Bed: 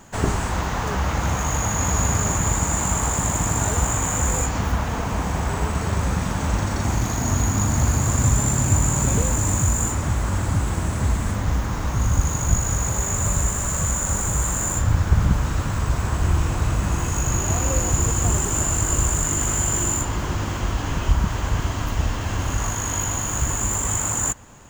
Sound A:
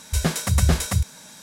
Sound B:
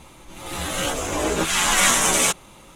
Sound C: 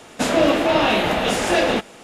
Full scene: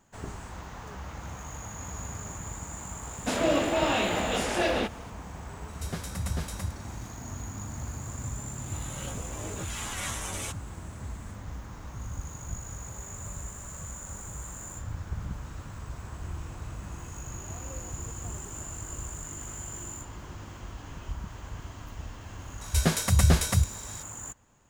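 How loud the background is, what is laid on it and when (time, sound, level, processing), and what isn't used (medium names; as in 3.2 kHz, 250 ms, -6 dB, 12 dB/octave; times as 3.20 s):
bed -17.5 dB
3.07 s: add C -8.5 dB
5.68 s: add A -14 dB
8.20 s: add B -18 dB
22.61 s: add A -2 dB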